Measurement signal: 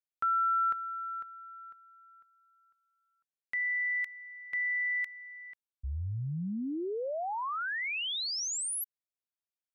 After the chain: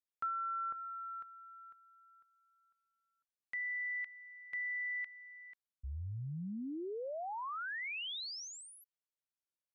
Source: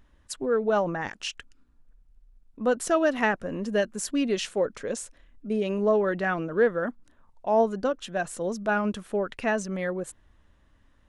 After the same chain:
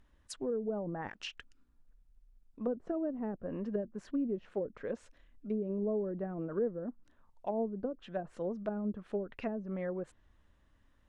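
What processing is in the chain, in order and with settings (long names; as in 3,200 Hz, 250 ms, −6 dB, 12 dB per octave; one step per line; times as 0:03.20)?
treble cut that deepens with the level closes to 390 Hz, closed at −22.5 dBFS
level −6.5 dB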